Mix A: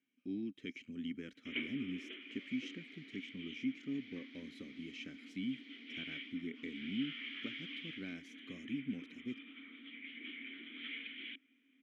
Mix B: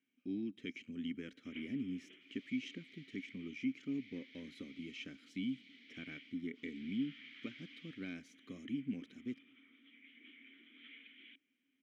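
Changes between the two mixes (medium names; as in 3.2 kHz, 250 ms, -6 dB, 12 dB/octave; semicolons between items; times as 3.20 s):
first sound -11.5 dB; reverb: on, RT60 0.80 s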